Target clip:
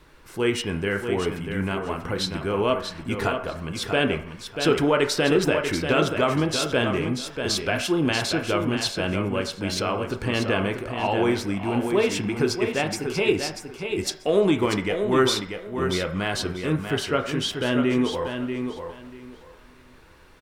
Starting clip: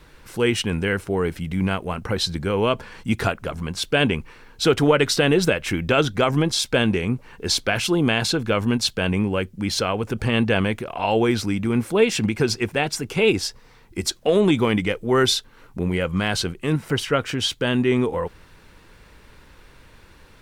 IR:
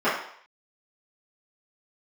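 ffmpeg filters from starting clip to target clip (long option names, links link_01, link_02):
-filter_complex "[0:a]aecho=1:1:639|1278|1917:0.447|0.0893|0.0179,asplit=2[link_01][link_02];[1:a]atrim=start_sample=2205,lowpass=5600[link_03];[link_02][link_03]afir=irnorm=-1:irlink=0,volume=-22dB[link_04];[link_01][link_04]amix=inputs=2:normalize=0,volume=-4.5dB"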